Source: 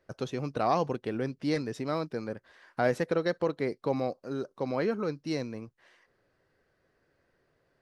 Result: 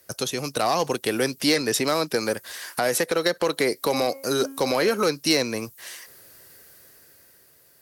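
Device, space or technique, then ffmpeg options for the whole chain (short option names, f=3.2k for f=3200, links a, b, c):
FM broadcast chain: -filter_complex "[0:a]asettb=1/sr,asplit=3[a][b][c];[a]atrim=end=3.734[d];[b]atrim=start=3.73:end=4.97,asetpts=PTS-STARTPTS,afade=t=in:d=0.004:c=qsin,afade=t=out:st=1.236:d=0.004:c=qsin,bandreject=f=271.5:t=h:w=4,bandreject=f=543:t=h:w=4,bandreject=f=814.5:t=h:w=4,bandreject=f=1.086k:t=h:w=4,bandreject=f=1.3575k:t=h:w=4,bandreject=f=1.629k:t=h:w=4,bandreject=f=1.9005k:t=h:w=4,bandreject=f=2.172k:t=h:w=4,bandreject=f=2.4435k:t=h:w=4,bandreject=f=2.715k:t=h:w=4,bandreject=f=2.9865k:t=h:w=4,bandreject=f=3.258k:t=h:w=4[e];[c]atrim=start=4.966[f];[d][e]acrossfade=d=0.004:c1=hsin:c2=qsin[g];[g][f]acrossfade=d=0.004:c1=qsin:c2=hsin,highpass=41,dynaudnorm=f=340:g=7:m=8dB,acrossover=split=300|1100|4000[h][i][j][k];[h]acompressor=threshold=-40dB:ratio=4[l];[i]acompressor=threshold=-22dB:ratio=4[m];[j]acompressor=threshold=-33dB:ratio=4[n];[k]acompressor=threshold=-56dB:ratio=4[o];[l][m][n][o]amix=inputs=4:normalize=0,aemphasis=mode=production:type=75fm,alimiter=limit=-19dB:level=0:latency=1:release=143,asoftclip=type=hard:threshold=-21dB,lowpass=f=15k:w=0.5412,lowpass=f=15k:w=1.3066,aemphasis=mode=production:type=75fm,volume=7dB"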